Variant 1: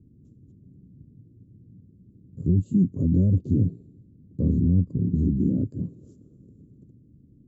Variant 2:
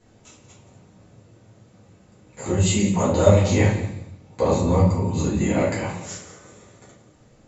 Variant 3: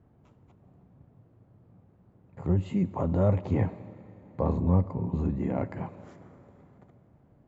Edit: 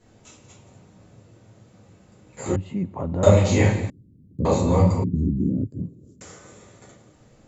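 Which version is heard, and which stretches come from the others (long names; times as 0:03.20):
2
0:02.56–0:03.23: punch in from 3
0:03.90–0:04.45: punch in from 1
0:05.04–0:06.21: punch in from 1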